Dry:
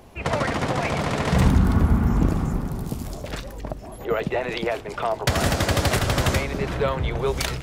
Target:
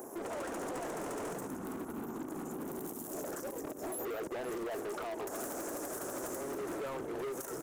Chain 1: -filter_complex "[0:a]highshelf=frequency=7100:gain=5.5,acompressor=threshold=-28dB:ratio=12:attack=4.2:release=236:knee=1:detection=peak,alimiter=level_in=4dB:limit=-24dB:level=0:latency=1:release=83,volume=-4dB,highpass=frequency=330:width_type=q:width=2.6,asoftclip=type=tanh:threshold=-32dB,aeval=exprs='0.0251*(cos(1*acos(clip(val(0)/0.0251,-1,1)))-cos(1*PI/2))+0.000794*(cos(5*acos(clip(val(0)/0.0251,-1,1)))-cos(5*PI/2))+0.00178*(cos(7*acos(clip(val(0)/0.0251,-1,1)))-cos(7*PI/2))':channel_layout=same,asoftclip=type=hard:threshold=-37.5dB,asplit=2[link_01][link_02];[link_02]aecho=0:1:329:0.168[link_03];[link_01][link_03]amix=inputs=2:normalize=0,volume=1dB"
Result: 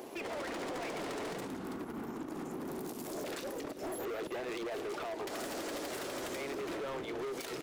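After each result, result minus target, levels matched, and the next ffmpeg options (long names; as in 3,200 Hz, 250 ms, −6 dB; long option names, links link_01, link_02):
4,000 Hz band +8.0 dB; echo 193 ms early; 8,000 Hz band −3.5 dB
-filter_complex "[0:a]highshelf=frequency=7100:gain=5.5,acompressor=threshold=-28dB:ratio=12:attack=4.2:release=236:knee=1:detection=peak,asuperstop=centerf=3200:order=8:qfactor=0.74,alimiter=level_in=4dB:limit=-24dB:level=0:latency=1:release=83,volume=-4dB,highpass=frequency=330:width_type=q:width=2.6,asoftclip=type=tanh:threshold=-32dB,aeval=exprs='0.0251*(cos(1*acos(clip(val(0)/0.0251,-1,1)))-cos(1*PI/2))+0.000794*(cos(5*acos(clip(val(0)/0.0251,-1,1)))-cos(5*PI/2))+0.00178*(cos(7*acos(clip(val(0)/0.0251,-1,1)))-cos(7*PI/2))':channel_layout=same,asoftclip=type=hard:threshold=-37.5dB,asplit=2[link_01][link_02];[link_02]aecho=0:1:329:0.168[link_03];[link_01][link_03]amix=inputs=2:normalize=0,volume=1dB"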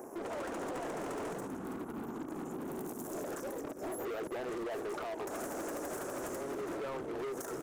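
echo 193 ms early; 8,000 Hz band −3.5 dB
-filter_complex "[0:a]highshelf=frequency=7100:gain=5.5,acompressor=threshold=-28dB:ratio=12:attack=4.2:release=236:knee=1:detection=peak,asuperstop=centerf=3200:order=8:qfactor=0.74,alimiter=level_in=4dB:limit=-24dB:level=0:latency=1:release=83,volume=-4dB,highpass=frequency=330:width_type=q:width=2.6,asoftclip=type=tanh:threshold=-32dB,aeval=exprs='0.0251*(cos(1*acos(clip(val(0)/0.0251,-1,1)))-cos(1*PI/2))+0.000794*(cos(5*acos(clip(val(0)/0.0251,-1,1)))-cos(5*PI/2))+0.00178*(cos(7*acos(clip(val(0)/0.0251,-1,1)))-cos(7*PI/2))':channel_layout=same,asoftclip=type=hard:threshold=-37.5dB,asplit=2[link_01][link_02];[link_02]aecho=0:1:522:0.168[link_03];[link_01][link_03]amix=inputs=2:normalize=0,volume=1dB"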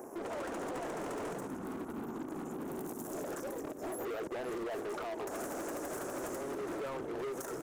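8,000 Hz band −3.5 dB
-filter_complex "[0:a]highshelf=frequency=7100:gain=15.5,acompressor=threshold=-28dB:ratio=12:attack=4.2:release=236:knee=1:detection=peak,asuperstop=centerf=3200:order=8:qfactor=0.74,alimiter=level_in=4dB:limit=-24dB:level=0:latency=1:release=83,volume=-4dB,highpass=frequency=330:width_type=q:width=2.6,asoftclip=type=tanh:threshold=-32dB,aeval=exprs='0.0251*(cos(1*acos(clip(val(0)/0.0251,-1,1)))-cos(1*PI/2))+0.000794*(cos(5*acos(clip(val(0)/0.0251,-1,1)))-cos(5*PI/2))+0.00178*(cos(7*acos(clip(val(0)/0.0251,-1,1)))-cos(7*PI/2))':channel_layout=same,asoftclip=type=hard:threshold=-37.5dB,asplit=2[link_01][link_02];[link_02]aecho=0:1:522:0.168[link_03];[link_01][link_03]amix=inputs=2:normalize=0,volume=1dB"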